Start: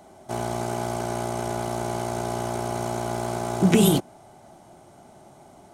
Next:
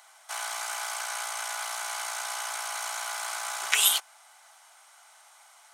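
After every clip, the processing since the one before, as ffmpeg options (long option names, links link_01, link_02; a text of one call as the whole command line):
ffmpeg -i in.wav -af "highpass=frequency=1200:width=0.5412,highpass=frequency=1200:width=1.3066,volume=5.5dB" out.wav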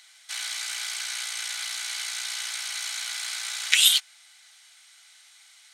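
ffmpeg -i in.wav -af "equalizer=frequency=250:width_type=o:width=1:gain=-12,equalizer=frequency=500:width_type=o:width=1:gain=-10,equalizer=frequency=1000:width_type=o:width=1:gain=-10,equalizer=frequency=2000:width_type=o:width=1:gain=8,equalizer=frequency=4000:width_type=o:width=1:gain=12,equalizer=frequency=8000:width_type=o:width=1:gain=4,volume=-4.5dB" out.wav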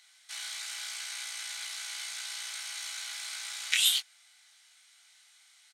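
ffmpeg -i in.wav -filter_complex "[0:a]asplit=2[link_01][link_02];[link_02]adelay=23,volume=-5dB[link_03];[link_01][link_03]amix=inputs=2:normalize=0,volume=-8dB" out.wav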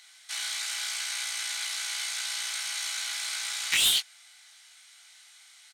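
ffmpeg -i in.wav -af "asoftclip=type=tanh:threshold=-24.5dB,volume=6.5dB" out.wav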